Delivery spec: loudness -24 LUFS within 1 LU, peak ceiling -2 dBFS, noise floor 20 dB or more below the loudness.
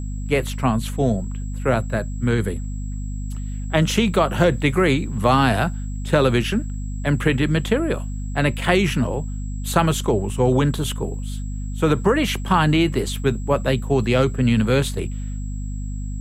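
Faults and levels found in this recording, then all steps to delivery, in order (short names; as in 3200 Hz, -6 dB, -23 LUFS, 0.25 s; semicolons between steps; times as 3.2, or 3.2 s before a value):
hum 50 Hz; harmonics up to 250 Hz; hum level -25 dBFS; steady tone 7700 Hz; tone level -46 dBFS; loudness -21.5 LUFS; peak -3.0 dBFS; loudness target -24.0 LUFS
-> notches 50/100/150/200/250 Hz; notch 7700 Hz, Q 30; gain -2.5 dB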